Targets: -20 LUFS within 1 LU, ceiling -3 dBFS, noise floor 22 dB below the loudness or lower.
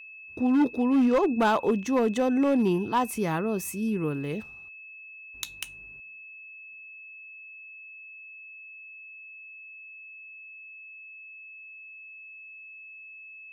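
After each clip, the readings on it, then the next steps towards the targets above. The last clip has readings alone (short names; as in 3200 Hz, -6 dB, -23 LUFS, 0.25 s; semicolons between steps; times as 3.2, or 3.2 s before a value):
clipped 0.8%; flat tops at -17.5 dBFS; steady tone 2600 Hz; tone level -43 dBFS; loudness -26.0 LUFS; peak -17.5 dBFS; loudness target -20.0 LUFS
-> clip repair -17.5 dBFS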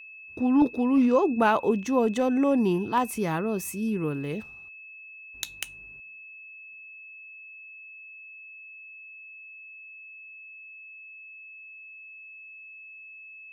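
clipped 0.0%; steady tone 2600 Hz; tone level -43 dBFS
-> notch 2600 Hz, Q 30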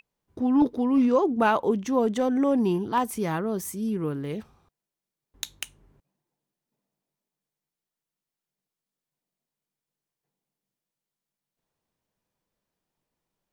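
steady tone none; loudness -25.0 LUFS; peak -9.0 dBFS; loudness target -20.0 LUFS
-> gain +5 dB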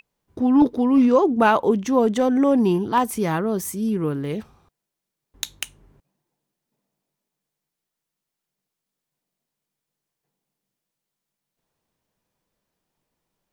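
loudness -20.0 LUFS; peak -4.0 dBFS; noise floor -84 dBFS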